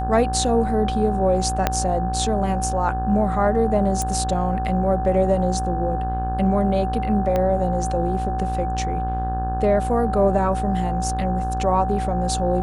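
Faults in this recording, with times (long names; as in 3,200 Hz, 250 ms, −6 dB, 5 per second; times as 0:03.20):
mains buzz 60 Hz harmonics 29 −26 dBFS
whistle 760 Hz −25 dBFS
0:01.67: click −4 dBFS
0:04.02: click
0:07.36: click −11 dBFS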